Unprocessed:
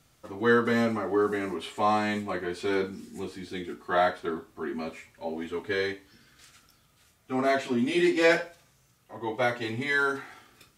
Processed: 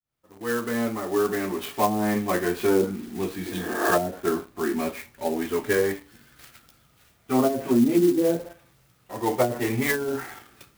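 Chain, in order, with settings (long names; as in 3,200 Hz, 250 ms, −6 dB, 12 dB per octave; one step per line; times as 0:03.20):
fade in at the beginning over 2.30 s
on a send at −21 dB: convolution reverb RT60 0.45 s, pre-delay 6 ms
on the sum: treble cut that deepens with the level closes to 320 Hz, closed at −20.5 dBFS
healed spectral selection 0:03.46–0:03.88, 240–2,400 Hz both
in parallel at −6 dB: bit reduction 8 bits
on the sum: converter with an unsteady clock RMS 0.043 ms
level +4 dB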